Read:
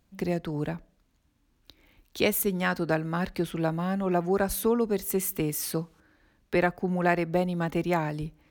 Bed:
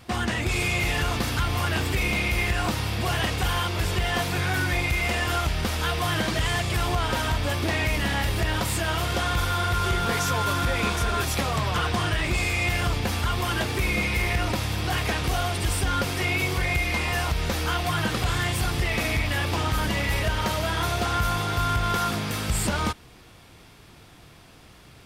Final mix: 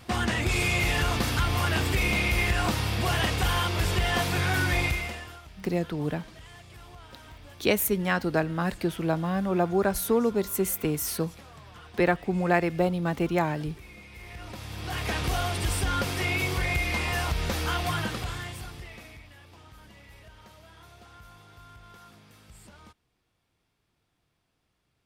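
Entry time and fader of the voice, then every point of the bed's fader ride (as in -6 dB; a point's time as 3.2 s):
5.45 s, +1.0 dB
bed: 4.86 s -0.5 dB
5.42 s -23 dB
14.07 s -23 dB
15.17 s -2.5 dB
17.9 s -2.5 dB
19.36 s -26 dB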